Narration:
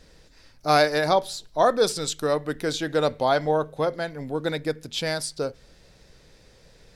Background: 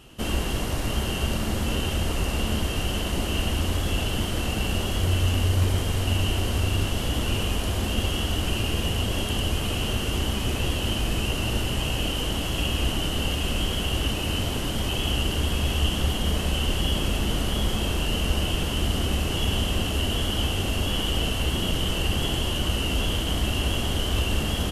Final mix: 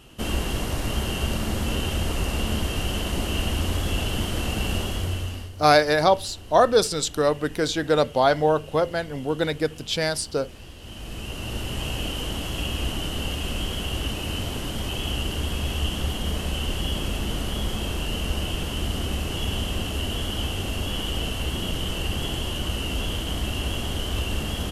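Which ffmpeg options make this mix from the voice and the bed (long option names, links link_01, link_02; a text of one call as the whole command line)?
ffmpeg -i stem1.wav -i stem2.wav -filter_complex "[0:a]adelay=4950,volume=2.5dB[link_01];[1:a]volume=15.5dB,afade=type=out:start_time=4.75:duration=0.76:silence=0.125893,afade=type=in:start_time=10.79:duration=1.08:silence=0.16788[link_02];[link_01][link_02]amix=inputs=2:normalize=0" out.wav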